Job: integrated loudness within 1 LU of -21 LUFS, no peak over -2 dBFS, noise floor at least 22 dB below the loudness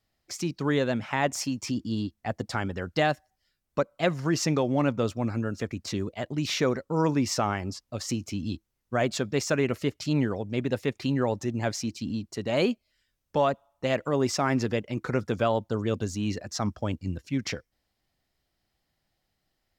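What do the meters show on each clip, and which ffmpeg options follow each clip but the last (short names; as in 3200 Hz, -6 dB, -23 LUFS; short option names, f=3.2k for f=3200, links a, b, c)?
loudness -28.5 LUFS; peak -12.5 dBFS; loudness target -21.0 LUFS
-> -af "volume=7.5dB"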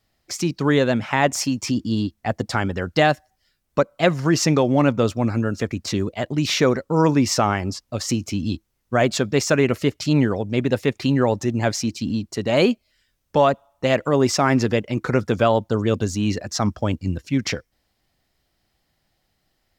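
loudness -21.5 LUFS; peak -5.0 dBFS; noise floor -72 dBFS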